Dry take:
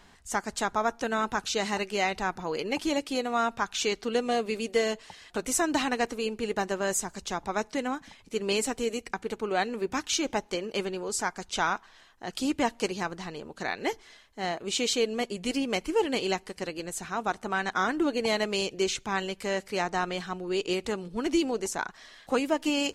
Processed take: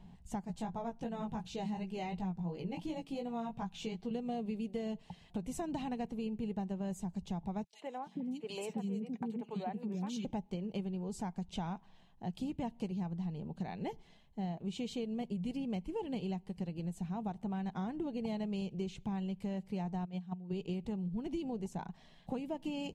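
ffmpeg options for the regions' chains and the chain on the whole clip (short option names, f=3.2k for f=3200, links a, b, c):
-filter_complex "[0:a]asettb=1/sr,asplit=3[a][b][c];[a]atrim=end=0.454[d];[b]atrim=start=0.45:end=4.11,asetpts=PTS-STARTPTS,afade=t=in:d=0.004:c=qsin,afade=t=out:st=3.656:d=0.004:c=qsin,aecho=1:1:6.2:0.31,atrim=end_sample=161406,flanger=delay=16:depth=2.4:speed=2.8[e];[c]atrim=start=4.106[f];[d][e]acrossfade=d=0.004:c1=hsin:c2=qsin[g];[g][f]acrossfade=d=0.004:c1=qsin:c2=hsin,asettb=1/sr,asplit=3[h][i][j];[h]atrim=end=7.644[k];[i]atrim=start=7.64:end=10.25,asetpts=PTS-STARTPTS,afade=t=in:d=0.004:c=qsin,afade=t=out:st=2.606:d=0.004:c=qsin,highpass=f=140:w=0.5412,highpass=f=140:w=1.3066,acrossover=split=400|2600[l][m][n];[m]adelay=90[o];[l]adelay=420[p];[p][o][n]amix=inputs=3:normalize=0,atrim=end_sample=115101[q];[j]atrim=start=10.246[r];[k][q]acrossfade=d=0.004:c1=hsin:c2=qsin[s];[s][r]acrossfade=d=0.004:c1=qsin:c2=hsin,asettb=1/sr,asplit=3[t][u][v];[t]atrim=end=20.054[w];[u]atrim=start=20.05:end=20.53,asetpts=PTS-STARTPTS,afade=t=in:d=0.004:c=qsin,afade=t=out:st=0.476:d=0.004:c=qsin,agate=range=-14dB:threshold=-32dB:ratio=16:release=100:detection=peak,highpass=53,aecho=1:1:4.3:0.31,atrim=end_sample=21168[x];[v]atrim=start=20.526[y];[w][x]acrossfade=d=0.004:c1=hsin:c2=qsin[z];[z][y]acrossfade=d=0.004:c1=qsin:c2=hsin,firequalizer=gain_entry='entry(100,0);entry(170,10);entry(280,-8);entry(530,-11);entry(830,-7);entry(1300,-24);entry(2800,-14);entry(5400,-22);entry(14000,-19)':delay=0.05:min_phase=1,acompressor=threshold=-39dB:ratio=4,volume=3dB"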